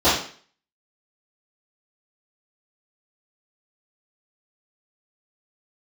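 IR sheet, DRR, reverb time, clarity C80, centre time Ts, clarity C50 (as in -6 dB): -16.5 dB, 0.45 s, 8.5 dB, 45 ms, 3.5 dB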